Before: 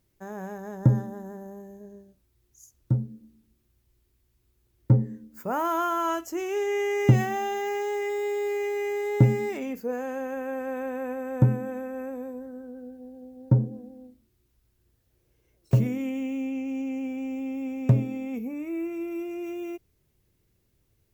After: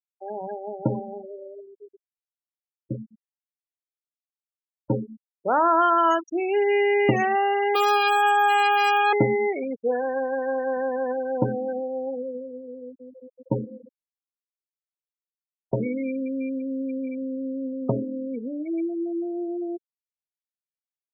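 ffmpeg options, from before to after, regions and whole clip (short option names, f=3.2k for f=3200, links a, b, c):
-filter_complex "[0:a]asettb=1/sr,asplit=3[a][b][c];[a]atrim=end=7.754[d];[b]atrim=start=7.75:end=9.13,asetpts=PTS-STARTPTS,afade=t=in:d=0.004:c=qsin,afade=t=out:st=1.376:d=0.004:c=qsin,equalizer=f=16k:w=0.51:g=13,acontrast=86,aeval=exprs='abs(val(0))':c=same[e];[c]atrim=start=9.126[f];[d][e]acrossfade=d=0.004:c1=hsin:c2=qsin[g];[g][f]acrossfade=d=0.004:c1=qsin:c2=hsin,highpass=360,afftfilt=real='re*gte(hypot(re,im),0.0355)':imag='im*gte(hypot(re,im),0.0355)':win_size=1024:overlap=0.75,volume=8dB"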